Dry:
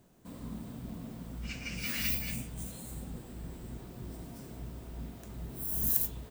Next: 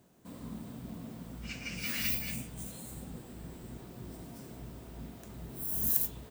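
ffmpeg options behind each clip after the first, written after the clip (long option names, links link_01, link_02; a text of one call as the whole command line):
ffmpeg -i in.wav -af "highpass=frequency=91:poles=1" out.wav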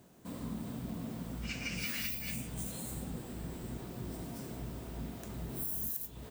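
ffmpeg -i in.wav -af "acompressor=threshold=-38dB:ratio=10,volume=4dB" out.wav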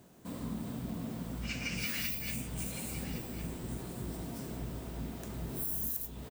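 ffmpeg -i in.wav -af "aecho=1:1:1110:0.251,volume=1.5dB" out.wav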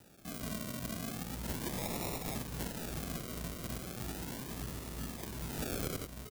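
ffmpeg -i in.wav -filter_complex "[0:a]acrusher=samples=40:mix=1:aa=0.000001:lfo=1:lforange=24:lforate=0.36,acrossover=split=490[link_01][link_02];[link_02]acompressor=threshold=-38dB:ratio=6[link_03];[link_01][link_03]amix=inputs=2:normalize=0,crystalizer=i=2.5:c=0,volume=-2.5dB" out.wav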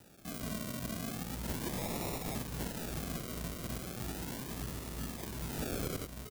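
ffmpeg -i in.wav -af "volume=26.5dB,asoftclip=hard,volume=-26.5dB,volume=1dB" out.wav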